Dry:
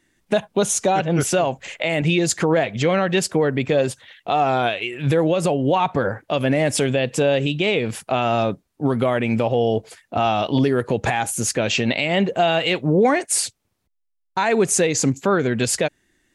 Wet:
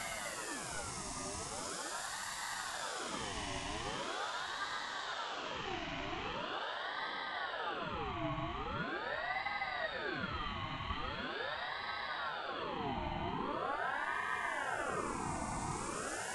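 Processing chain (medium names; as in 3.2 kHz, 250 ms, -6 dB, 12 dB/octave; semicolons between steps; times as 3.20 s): Doppler pass-by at 5.53 s, 38 m/s, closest 9.5 m; Paulstretch 7.3×, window 1.00 s, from 11.12 s; ring modulator with a swept carrier 950 Hz, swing 50%, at 0.42 Hz; trim +10 dB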